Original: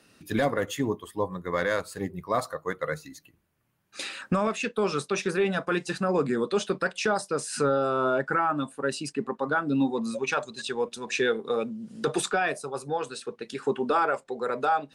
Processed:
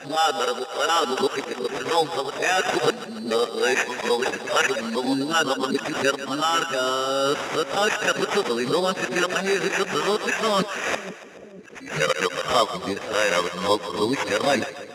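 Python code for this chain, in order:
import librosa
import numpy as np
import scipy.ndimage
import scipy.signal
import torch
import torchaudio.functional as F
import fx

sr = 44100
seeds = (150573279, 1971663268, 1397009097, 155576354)

y = np.flip(x).copy()
y = fx.dynamic_eq(y, sr, hz=3700.0, q=1.2, threshold_db=-47.0, ratio=4.0, max_db=4)
y = fx.sample_hold(y, sr, seeds[0], rate_hz=4300.0, jitter_pct=0)
y = fx.highpass(y, sr, hz=270.0, slope=6)
y = fx.rider(y, sr, range_db=4, speed_s=0.5)
y = scipy.signal.sosfilt(scipy.signal.butter(2, 6700.0, 'lowpass', fs=sr, output='sos'), y)
y = fx.low_shelf(y, sr, hz=420.0, db=-4.5)
y = fx.echo_split(y, sr, split_hz=510.0, low_ms=486, high_ms=142, feedback_pct=52, wet_db=-12.5)
y = fx.pre_swell(y, sr, db_per_s=120.0)
y = y * 10.0 ** (6.5 / 20.0)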